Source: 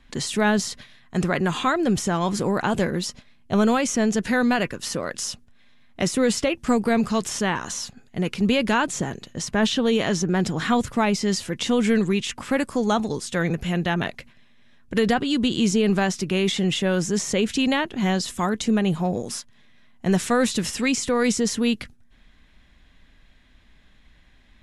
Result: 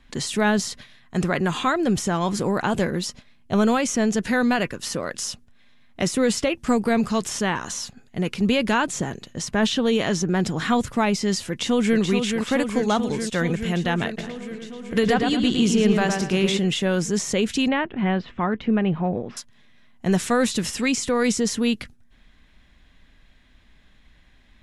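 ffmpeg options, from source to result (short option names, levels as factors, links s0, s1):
-filter_complex "[0:a]asplit=2[s0][s1];[s1]afade=t=in:st=11.49:d=0.01,afade=t=out:st=12:d=0.01,aecho=0:1:430|860|1290|1720|2150|2580|3010|3440|3870|4300|4730|5160:0.530884|0.424708|0.339766|0.271813|0.21745|0.17396|0.139168|0.111335|0.0890676|0.0712541|0.0570033|0.0456026[s2];[s0][s2]amix=inputs=2:normalize=0,asplit=3[s3][s4][s5];[s3]afade=t=out:st=14.17:d=0.02[s6];[s4]asplit=2[s7][s8];[s8]adelay=110,lowpass=f=3600:p=1,volume=0.631,asplit=2[s9][s10];[s10]adelay=110,lowpass=f=3600:p=1,volume=0.35,asplit=2[s11][s12];[s12]adelay=110,lowpass=f=3600:p=1,volume=0.35,asplit=2[s13][s14];[s14]adelay=110,lowpass=f=3600:p=1,volume=0.35[s15];[s7][s9][s11][s13][s15]amix=inputs=5:normalize=0,afade=t=in:st=14.17:d=0.02,afade=t=out:st=16.57:d=0.02[s16];[s5]afade=t=in:st=16.57:d=0.02[s17];[s6][s16][s17]amix=inputs=3:normalize=0,asettb=1/sr,asplit=3[s18][s19][s20];[s18]atrim=end=17.684[s21];[s19]atrim=start=17.68:end=19.37,asetpts=PTS-STARTPTS,afade=t=in:d=0.004:c=qsin,afade=t=out:st=1.686:d=0.004:c=qsin,lowpass=f=2700:w=0.5412,lowpass=f=2700:w=1.3066[s22];[s20]atrim=start=19.366[s23];[s21][s22]acrossfade=d=0.004:c1=hsin:c2=qsin[s24];[s24][s23]acrossfade=d=0.004:c1=qsin:c2=hsin"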